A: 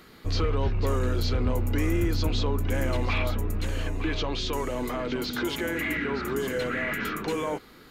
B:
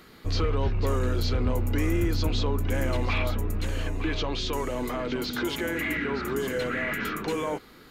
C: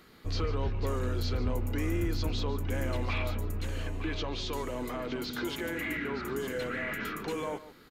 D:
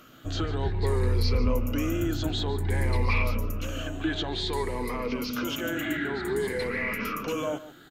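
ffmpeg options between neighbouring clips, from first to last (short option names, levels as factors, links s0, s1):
-af anull
-af "aecho=1:1:147:0.168,volume=0.531"
-af "afftfilt=real='re*pow(10,12/40*sin(2*PI*(0.88*log(max(b,1)*sr/1024/100)/log(2)-(0.54)*(pts-256)/sr)))':imag='im*pow(10,12/40*sin(2*PI*(0.88*log(max(b,1)*sr/1024/100)/log(2)-(0.54)*(pts-256)/sr)))':win_size=1024:overlap=0.75,volume=1.41"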